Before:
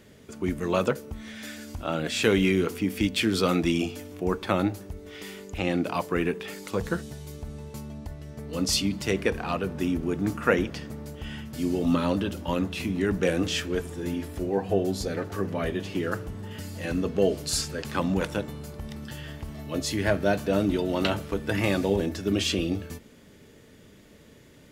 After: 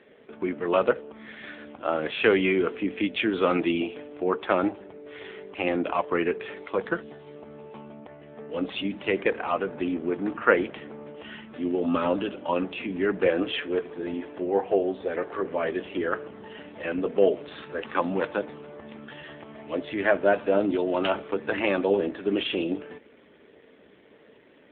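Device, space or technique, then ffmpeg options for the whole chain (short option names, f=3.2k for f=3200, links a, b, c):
telephone: -filter_complex "[0:a]asettb=1/sr,asplit=3[a][b][c];[a]atrim=end=14.604[d];[b]atrim=start=14.6:end=15.65,asetpts=PTS-STARTPTS,afade=t=in:d=0.004:c=qsin,afade=t=out:st=1.046:d=0.004:c=qsin,equalizer=f=210:w=3.3:g=-6[e];[c]atrim=start=15.646[f];[d][e]acrossfade=d=0.004:c1=hsin:c2=qsin[g];[g][f]acrossfade=d=0.004:c1=qsin:c2=hsin,highpass=360,lowpass=3.1k,volume=5dB" -ar 8000 -c:a libopencore_amrnb -b:a 7400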